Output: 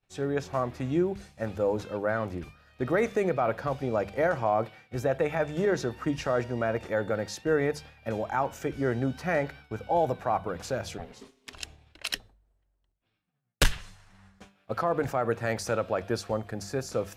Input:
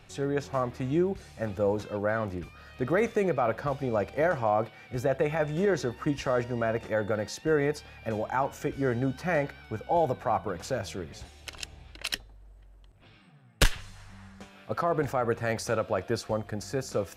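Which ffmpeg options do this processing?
ffmpeg -i in.wav -filter_complex "[0:a]agate=range=-33dB:threshold=-41dB:ratio=3:detection=peak,bandreject=frequency=50:width_type=h:width=6,bandreject=frequency=100:width_type=h:width=6,bandreject=frequency=150:width_type=h:width=6,bandreject=frequency=200:width_type=h:width=6,asplit=3[link_01][link_02][link_03];[link_01]afade=type=out:start_time=10.97:duration=0.02[link_04];[link_02]aeval=exprs='val(0)*sin(2*PI*330*n/s)':channel_layout=same,afade=type=in:start_time=10.97:duration=0.02,afade=type=out:start_time=11.52:duration=0.02[link_05];[link_03]afade=type=in:start_time=11.52:duration=0.02[link_06];[link_04][link_05][link_06]amix=inputs=3:normalize=0" out.wav

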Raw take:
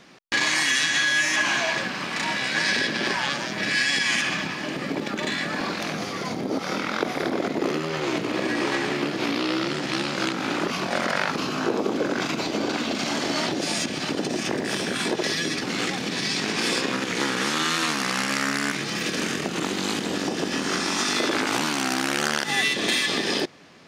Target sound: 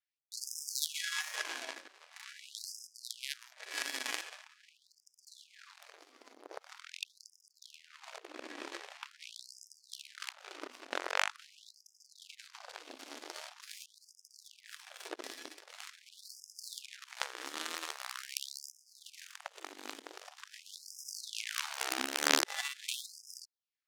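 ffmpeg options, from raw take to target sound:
ffmpeg -i in.wav -filter_complex "[0:a]asettb=1/sr,asplit=3[link_01][link_02][link_03];[link_01]atrim=end=21.084[link_04];[link_02]atrim=start=21.08:end=22.59,asetpts=PTS-STARTPTS,afade=type=in:duration=0.004:curve=qsin,afade=type=out:start_time=1.506:duration=0.004:curve=qsin,lowshelf=frequency=270:width_type=q:width=1.5:gain=9.5[link_05];[link_03]atrim=start=22.586[link_06];[link_04][link_05]acrossfade=duration=0.004:curve1=hsin:curve2=qsin[link_07];[link_07][link_06]acrossfade=duration=0.004:curve1=qsin:curve2=hsin,aeval=exprs='0.501*(cos(1*acos(clip(val(0)/0.501,-1,1)))-cos(1*PI/2))+0.178*(cos(3*acos(clip(val(0)/0.501,-1,1)))-cos(3*PI/2))+0.0141*(cos(4*acos(clip(val(0)/0.501,-1,1)))-cos(4*PI/2))+0.00708*(cos(5*acos(clip(val(0)/0.501,-1,1)))-cos(5*PI/2))+0.00355*(cos(6*acos(clip(val(0)/0.501,-1,1)))-cos(6*PI/2))':channel_layout=same,afftfilt=real='re*gte(b*sr/1024,220*pow(5000/220,0.5+0.5*sin(2*PI*0.44*pts/sr)))':imag='im*gte(b*sr/1024,220*pow(5000/220,0.5+0.5*sin(2*PI*0.44*pts/sr)))':win_size=1024:overlap=0.75,volume=3dB" out.wav

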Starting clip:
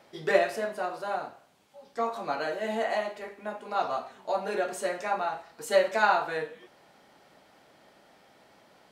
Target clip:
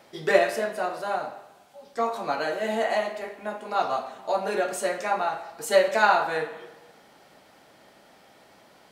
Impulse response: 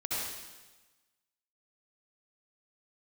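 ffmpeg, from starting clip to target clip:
-filter_complex "[0:a]highshelf=frequency=5100:gain=5,asplit=2[link_01][link_02];[1:a]atrim=start_sample=2205,lowpass=3900[link_03];[link_02][link_03]afir=irnorm=-1:irlink=0,volume=-17dB[link_04];[link_01][link_04]amix=inputs=2:normalize=0,volume=2.5dB"

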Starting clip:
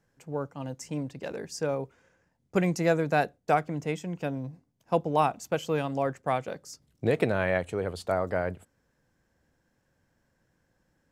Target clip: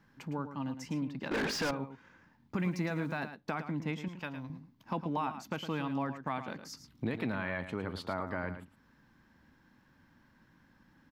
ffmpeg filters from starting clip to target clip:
ffmpeg -i in.wav -filter_complex "[0:a]equalizer=frequency=250:width_type=o:width=1:gain=10,equalizer=frequency=500:width_type=o:width=1:gain=-9,equalizer=frequency=1000:width_type=o:width=1:gain=8,equalizer=frequency=2000:width_type=o:width=1:gain=3,equalizer=frequency=4000:width_type=o:width=1:gain=6,equalizer=frequency=8000:width_type=o:width=1:gain=-11,alimiter=limit=-14dB:level=0:latency=1:release=19,asettb=1/sr,asplit=3[link_01][link_02][link_03];[link_01]atrim=end=4.084[link_04];[link_02]atrim=start=4.08:end=4.5,asetpts=PTS-STARTPTS,afade=type=in:duration=0.004:curve=qsin,afade=type=out:start_time=0.416:duration=0.004:curve=qsin,equalizer=frequency=230:width_type=o:width=2.1:gain=-14[link_05];[link_03]atrim=start=4.496[link_06];[link_04][link_05]acrossfade=duration=0.004:curve1=hsin:curve2=qsin[link_07];[link_07][link_06]acrossfade=duration=0.004:curve1=qsin:curve2=hsin,acompressor=threshold=-45dB:ratio=2,asettb=1/sr,asplit=3[link_08][link_09][link_10];[link_08]atrim=end=2.594[link_11];[link_09]atrim=start=2.59:end=3.2,asetpts=PTS-STARTPTS,afade=type=in:duration=0.004:curve=qsin,afade=type=out:start_time=0.606:duration=0.004:curve=qsin,aeval=exprs='val(0)*gte(abs(val(0)),0.00112)':channel_layout=same[link_12];[link_10]atrim=start=3.196[link_13];[link_11][link_12]acrossfade=duration=0.004:curve1=hsin:curve2=qsin[link_14];[link_14][link_13]acrossfade=duration=0.004:curve1=qsin:curve2=hsin,bandreject=frequency=720:width=12,aecho=1:1:110:0.299,asettb=1/sr,asplit=3[link_15][link_16][link_17];[link_15]atrim=end=1.314[link_18];[link_16]atrim=start=1.31:end=1.71,asetpts=PTS-STARTPTS,afade=type=in:duration=0.004:curve=qsin,afade=type=out:start_time=0.396:duration=0.004:curve=qsin,asplit=2[link_19][link_20];[link_20]highpass=frequency=720:poles=1,volume=33dB,asoftclip=type=tanh:threshold=-28dB[link_21];[link_19][link_21]amix=inputs=2:normalize=0,lowpass=frequency=2900:poles=1,volume=-6dB[link_22];[link_17]atrim=start=1.706[link_23];[link_18][link_22]acrossfade=duration=0.004:curve1=hsin:curve2=qsin[link_24];[link_24][link_23]acrossfade=duration=0.004:curve1=qsin:curve2=hsin,volume=3.5dB" out.wav

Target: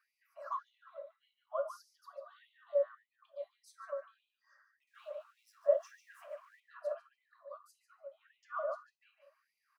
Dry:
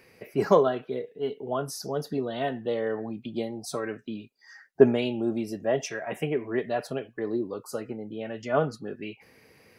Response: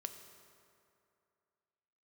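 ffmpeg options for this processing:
-filter_complex "[0:a]asettb=1/sr,asplit=3[link_01][link_02][link_03];[link_01]atrim=end=4.874[link_04];[link_02]atrim=start=4.87:end=6.6,asetpts=PTS-STARTPTS,afade=type=in:duration=0.004:curve=qsin,afade=type=out:start_time=1.726:duration=0.004:curve=qsin,aeval=exprs='val(0)+0.5*0.0106*sgn(val(0))':channel_layout=same[link_05];[link_03]atrim=start=6.596[link_06];[link_04][link_05]acrossfade=duration=0.004:curve1=hsin:curve2=qsin[link_07];[link_07][link_06]acrossfade=duration=0.004:curve1=qsin:curve2=hsin,firequalizer=gain_entry='entry(300,0);entry(550,8);entry(790,-30);entry(1100,-3);entry(2100,-29);entry(4300,-25)':delay=0.05:min_phase=1,asplit=2[link_08][link_09];[link_09]adelay=146,lowpass=frequency=3500:poles=1,volume=-6dB,asplit=2[link_10][link_11];[link_11]adelay=146,lowpass=frequency=3500:poles=1,volume=0.22,asplit=2[link_12][link_13];[link_13]adelay=146,lowpass=frequency=3500:poles=1,volume=0.22[link_14];[link_08][link_10][link_12][link_14]amix=inputs=4:normalize=0[link_15];[1:a]atrim=start_sample=2205,atrim=end_sample=3528[link_16];[link_15][link_16]afir=irnorm=-1:irlink=0,asplit=2[link_17][link_18];[link_18]acompressor=threshold=-30dB:ratio=6,volume=-2.5dB[link_19];[link_17][link_19]amix=inputs=2:normalize=0,afftfilt=real='re*gte(b*sr/1024,530*pow(2000/530,0.5+0.5*sin(2*PI*1.7*pts/sr)))':imag='im*gte(b*sr/1024,530*pow(2000/530,0.5+0.5*sin(2*PI*1.7*pts/sr)))':win_size=1024:overlap=0.75"

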